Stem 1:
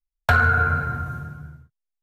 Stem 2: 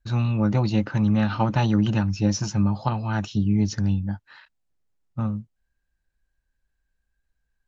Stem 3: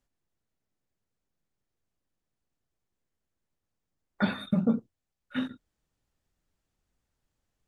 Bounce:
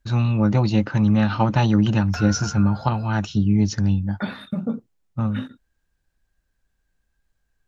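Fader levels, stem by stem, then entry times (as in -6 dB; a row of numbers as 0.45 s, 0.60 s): -15.0 dB, +3.0 dB, -0.5 dB; 1.85 s, 0.00 s, 0.00 s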